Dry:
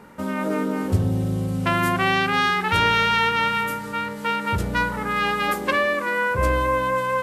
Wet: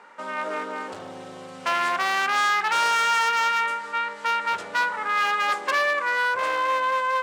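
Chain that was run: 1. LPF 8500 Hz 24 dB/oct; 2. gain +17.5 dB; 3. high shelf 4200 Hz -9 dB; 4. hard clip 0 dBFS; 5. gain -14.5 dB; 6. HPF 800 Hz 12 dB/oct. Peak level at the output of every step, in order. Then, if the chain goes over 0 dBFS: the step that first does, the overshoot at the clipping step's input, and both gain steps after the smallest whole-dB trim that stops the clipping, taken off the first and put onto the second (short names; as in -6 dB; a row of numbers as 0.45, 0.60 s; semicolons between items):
-7.0, +10.5, +9.5, 0.0, -14.5, -9.5 dBFS; step 2, 9.5 dB; step 2 +7.5 dB, step 5 -4.5 dB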